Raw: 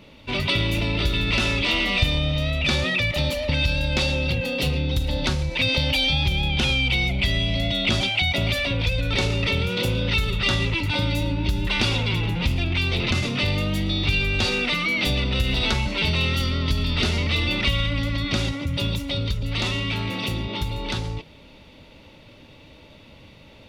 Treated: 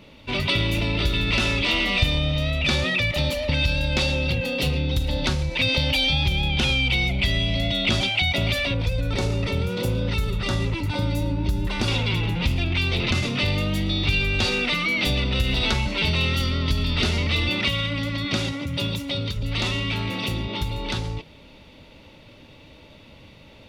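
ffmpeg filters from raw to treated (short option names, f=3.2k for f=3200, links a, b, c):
-filter_complex "[0:a]asettb=1/sr,asplit=3[a][b][c];[a]atrim=end=8.744[d];[b]atrim=start=8.74:end=11.88,asetpts=PTS-STARTPTS,afade=t=in:d=0.004:c=qsin,afade=t=out:st=3.136:d=0.004:c=qsin,equalizer=f=2.9k:w=0.85:g=-9[e];[c]atrim=start=11.876[f];[d][e]acrossfade=d=0.004:c1=hsin:c2=qsin[g];[g][f]acrossfade=d=0.004:c1=qsin:c2=hsin,asettb=1/sr,asplit=3[h][i][j];[h]atrim=end=17.494[k];[i]atrim=start=17.49:end=19.36,asetpts=PTS-STARTPTS,afade=t=in:d=0.004:c=qsin,afade=t=out:st=1.866:d=0.004:c=qsin,highpass=100[l];[j]atrim=start=19.356[m];[k][l]acrossfade=d=0.004:c1=hsin:c2=qsin[n];[n][m]acrossfade=d=0.004:c1=qsin:c2=hsin"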